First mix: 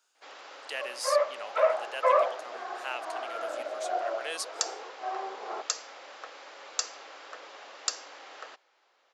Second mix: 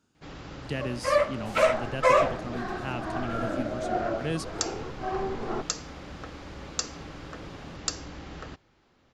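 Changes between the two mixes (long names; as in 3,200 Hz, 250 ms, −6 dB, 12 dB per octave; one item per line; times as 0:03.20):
speech: add spectral tilt −2 dB per octave
second sound: remove low-pass filter 1,300 Hz 12 dB per octave
master: remove high-pass filter 530 Hz 24 dB per octave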